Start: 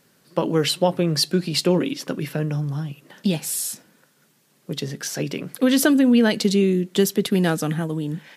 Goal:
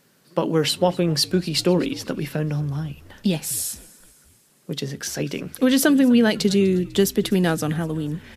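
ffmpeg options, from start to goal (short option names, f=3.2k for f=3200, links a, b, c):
-filter_complex "[0:a]asplit=5[a][b][c][d][e];[b]adelay=249,afreqshift=-67,volume=-22dB[f];[c]adelay=498,afreqshift=-134,volume=-27.5dB[g];[d]adelay=747,afreqshift=-201,volume=-33dB[h];[e]adelay=996,afreqshift=-268,volume=-38.5dB[i];[a][f][g][h][i]amix=inputs=5:normalize=0"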